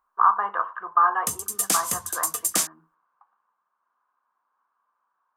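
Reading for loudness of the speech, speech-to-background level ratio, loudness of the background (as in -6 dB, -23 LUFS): -24.5 LUFS, 0.5 dB, -25.0 LUFS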